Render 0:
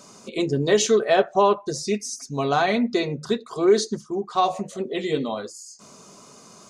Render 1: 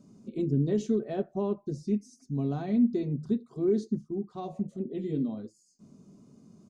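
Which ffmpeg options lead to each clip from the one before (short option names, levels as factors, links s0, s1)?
-af "firequalizer=gain_entry='entry(260,0);entry(470,-15);entry(1100,-25)':delay=0.05:min_phase=1"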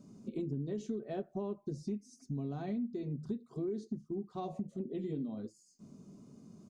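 -af "acompressor=threshold=0.0178:ratio=6"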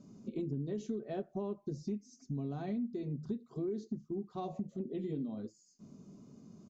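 -af "aresample=16000,aresample=44100"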